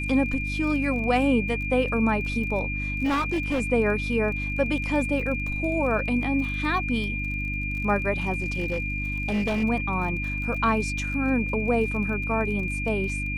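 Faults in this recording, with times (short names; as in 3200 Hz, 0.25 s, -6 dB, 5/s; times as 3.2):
crackle 29/s -34 dBFS
hum 50 Hz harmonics 6 -31 dBFS
tone 2400 Hz -30 dBFS
3.04–3.62 clipped -21 dBFS
8.34–9.64 clipped -21.5 dBFS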